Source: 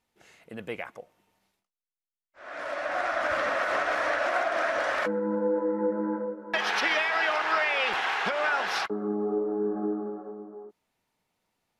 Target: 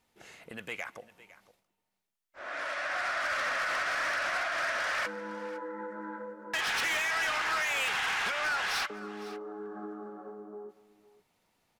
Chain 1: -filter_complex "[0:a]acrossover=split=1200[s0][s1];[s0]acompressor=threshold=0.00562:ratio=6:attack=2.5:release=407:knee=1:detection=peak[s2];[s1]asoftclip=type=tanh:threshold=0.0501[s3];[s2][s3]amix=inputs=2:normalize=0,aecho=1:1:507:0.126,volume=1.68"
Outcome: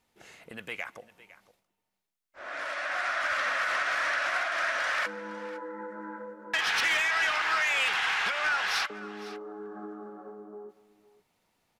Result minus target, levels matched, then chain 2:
saturation: distortion -6 dB
-filter_complex "[0:a]acrossover=split=1200[s0][s1];[s0]acompressor=threshold=0.00562:ratio=6:attack=2.5:release=407:knee=1:detection=peak[s2];[s1]asoftclip=type=tanh:threshold=0.0224[s3];[s2][s3]amix=inputs=2:normalize=0,aecho=1:1:507:0.126,volume=1.68"

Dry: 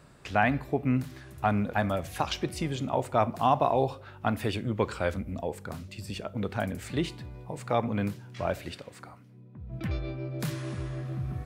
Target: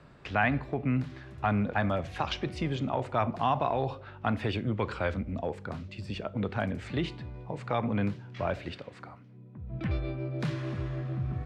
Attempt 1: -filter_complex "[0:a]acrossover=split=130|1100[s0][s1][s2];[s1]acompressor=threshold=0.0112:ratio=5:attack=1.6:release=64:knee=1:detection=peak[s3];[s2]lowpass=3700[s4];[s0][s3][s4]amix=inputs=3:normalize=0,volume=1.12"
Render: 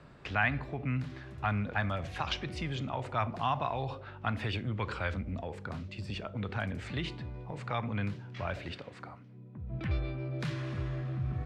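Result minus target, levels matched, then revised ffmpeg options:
compression: peak gain reduction +9.5 dB
-filter_complex "[0:a]acrossover=split=130|1100[s0][s1][s2];[s1]acompressor=threshold=0.0447:ratio=5:attack=1.6:release=64:knee=1:detection=peak[s3];[s2]lowpass=3700[s4];[s0][s3][s4]amix=inputs=3:normalize=0,volume=1.12"

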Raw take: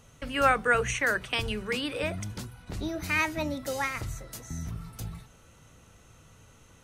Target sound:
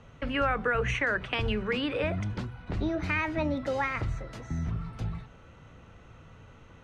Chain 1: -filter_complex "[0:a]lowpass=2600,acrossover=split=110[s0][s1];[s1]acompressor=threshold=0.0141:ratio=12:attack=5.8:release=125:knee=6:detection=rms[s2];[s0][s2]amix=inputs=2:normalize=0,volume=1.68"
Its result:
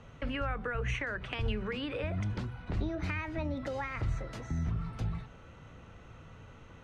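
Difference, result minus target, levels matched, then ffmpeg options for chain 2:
compression: peak gain reduction +9 dB
-filter_complex "[0:a]lowpass=2600,acrossover=split=110[s0][s1];[s1]acompressor=threshold=0.0447:ratio=12:attack=5.8:release=125:knee=6:detection=rms[s2];[s0][s2]amix=inputs=2:normalize=0,volume=1.68"

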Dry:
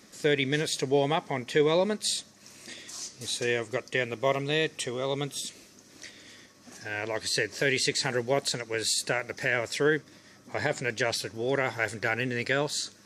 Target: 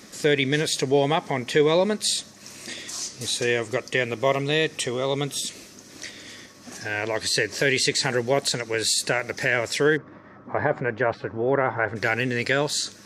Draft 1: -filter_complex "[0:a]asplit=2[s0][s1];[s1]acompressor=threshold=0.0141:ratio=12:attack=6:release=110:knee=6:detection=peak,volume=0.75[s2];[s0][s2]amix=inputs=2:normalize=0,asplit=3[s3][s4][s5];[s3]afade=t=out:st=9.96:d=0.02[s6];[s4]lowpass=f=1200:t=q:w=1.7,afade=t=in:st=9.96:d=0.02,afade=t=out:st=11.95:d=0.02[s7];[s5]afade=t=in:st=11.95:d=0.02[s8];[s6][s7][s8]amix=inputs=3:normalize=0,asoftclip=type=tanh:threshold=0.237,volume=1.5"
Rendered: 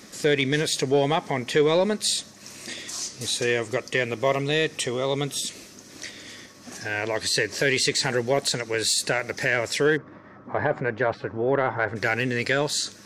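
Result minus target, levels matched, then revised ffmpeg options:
saturation: distortion +20 dB
-filter_complex "[0:a]asplit=2[s0][s1];[s1]acompressor=threshold=0.0141:ratio=12:attack=6:release=110:knee=6:detection=peak,volume=0.75[s2];[s0][s2]amix=inputs=2:normalize=0,asplit=3[s3][s4][s5];[s3]afade=t=out:st=9.96:d=0.02[s6];[s4]lowpass=f=1200:t=q:w=1.7,afade=t=in:st=9.96:d=0.02,afade=t=out:st=11.95:d=0.02[s7];[s5]afade=t=in:st=11.95:d=0.02[s8];[s6][s7][s8]amix=inputs=3:normalize=0,asoftclip=type=tanh:threshold=0.841,volume=1.5"

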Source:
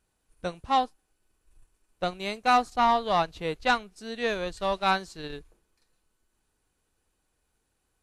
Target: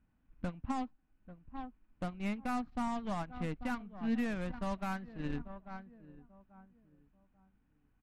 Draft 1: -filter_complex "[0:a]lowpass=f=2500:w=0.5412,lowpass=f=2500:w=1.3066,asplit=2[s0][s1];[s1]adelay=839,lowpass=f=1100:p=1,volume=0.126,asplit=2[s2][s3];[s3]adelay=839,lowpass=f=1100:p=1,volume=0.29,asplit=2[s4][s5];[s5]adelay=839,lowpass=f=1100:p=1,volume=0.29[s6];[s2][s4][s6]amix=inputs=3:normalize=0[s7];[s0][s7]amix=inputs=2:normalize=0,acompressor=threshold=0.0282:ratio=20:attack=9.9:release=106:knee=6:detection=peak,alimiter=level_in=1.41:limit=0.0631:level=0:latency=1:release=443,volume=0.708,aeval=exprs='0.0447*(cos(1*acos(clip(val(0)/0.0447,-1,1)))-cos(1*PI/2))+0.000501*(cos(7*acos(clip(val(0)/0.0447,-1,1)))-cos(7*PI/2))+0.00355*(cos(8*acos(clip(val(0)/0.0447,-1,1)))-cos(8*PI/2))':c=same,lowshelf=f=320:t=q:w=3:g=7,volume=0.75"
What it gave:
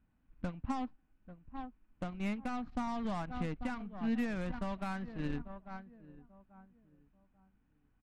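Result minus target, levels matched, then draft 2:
compression: peak gain reduction +15 dB
-filter_complex "[0:a]lowpass=f=2500:w=0.5412,lowpass=f=2500:w=1.3066,asplit=2[s0][s1];[s1]adelay=839,lowpass=f=1100:p=1,volume=0.126,asplit=2[s2][s3];[s3]adelay=839,lowpass=f=1100:p=1,volume=0.29,asplit=2[s4][s5];[s5]adelay=839,lowpass=f=1100:p=1,volume=0.29[s6];[s2][s4][s6]amix=inputs=3:normalize=0[s7];[s0][s7]amix=inputs=2:normalize=0,alimiter=level_in=1.41:limit=0.0631:level=0:latency=1:release=443,volume=0.708,aeval=exprs='0.0447*(cos(1*acos(clip(val(0)/0.0447,-1,1)))-cos(1*PI/2))+0.000501*(cos(7*acos(clip(val(0)/0.0447,-1,1)))-cos(7*PI/2))+0.00355*(cos(8*acos(clip(val(0)/0.0447,-1,1)))-cos(8*PI/2))':c=same,lowshelf=f=320:t=q:w=3:g=7,volume=0.75"

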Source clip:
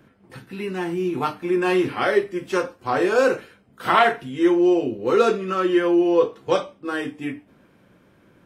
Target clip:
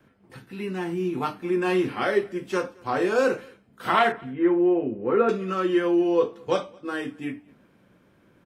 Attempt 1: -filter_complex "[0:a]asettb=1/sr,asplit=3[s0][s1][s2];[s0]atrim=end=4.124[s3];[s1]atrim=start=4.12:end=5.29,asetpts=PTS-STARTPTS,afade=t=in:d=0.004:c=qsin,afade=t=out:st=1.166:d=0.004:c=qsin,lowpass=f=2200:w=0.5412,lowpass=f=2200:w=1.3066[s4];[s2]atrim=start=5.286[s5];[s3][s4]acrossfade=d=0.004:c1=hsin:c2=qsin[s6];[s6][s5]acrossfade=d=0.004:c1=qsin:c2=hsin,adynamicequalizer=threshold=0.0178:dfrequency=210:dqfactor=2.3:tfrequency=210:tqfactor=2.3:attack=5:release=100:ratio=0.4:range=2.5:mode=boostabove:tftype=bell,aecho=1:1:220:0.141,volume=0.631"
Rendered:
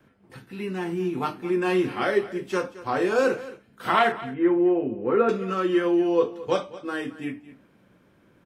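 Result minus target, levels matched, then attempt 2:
echo-to-direct +10.5 dB
-filter_complex "[0:a]asettb=1/sr,asplit=3[s0][s1][s2];[s0]atrim=end=4.124[s3];[s1]atrim=start=4.12:end=5.29,asetpts=PTS-STARTPTS,afade=t=in:d=0.004:c=qsin,afade=t=out:st=1.166:d=0.004:c=qsin,lowpass=f=2200:w=0.5412,lowpass=f=2200:w=1.3066[s4];[s2]atrim=start=5.286[s5];[s3][s4]acrossfade=d=0.004:c1=hsin:c2=qsin[s6];[s6][s5]acrossfade=d=0.004:c1=qsin:c2=hsin,adynamicequalizer=threshold=0.0178:dfrequency=210:dqfactor=2.3:tfrequency=210:tqfactor=2.3:attack=5:release=100:ratio=0.4:range=2.5:mode=boostabove:tftype=bell,aecho=1:1:220:0.0422,volume=0.631"

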